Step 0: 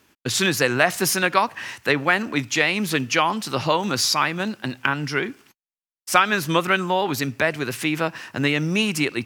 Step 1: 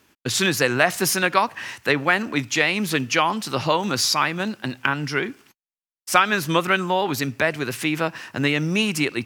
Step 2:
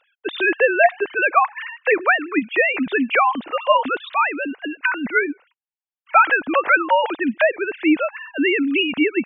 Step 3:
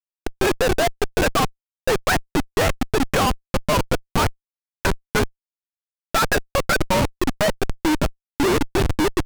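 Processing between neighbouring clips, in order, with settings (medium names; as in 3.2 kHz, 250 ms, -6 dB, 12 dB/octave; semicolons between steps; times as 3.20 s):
no audible change
formants replaced by sine waves; trim +3 dB
Schmitt trigger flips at -15 dBFS; loudspeaker Doppler distortion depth 0.34 ms; trim +2.5 dB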